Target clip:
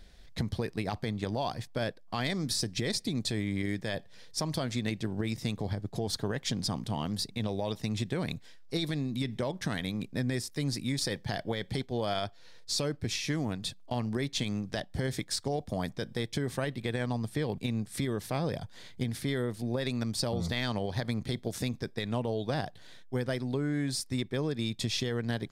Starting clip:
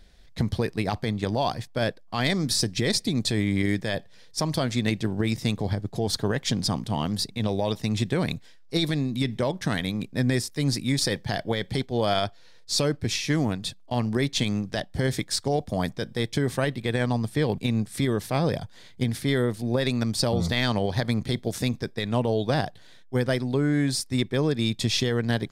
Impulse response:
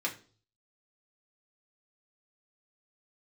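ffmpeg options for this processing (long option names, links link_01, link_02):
-af "acompressor=threshold=-34dB:ratio=2"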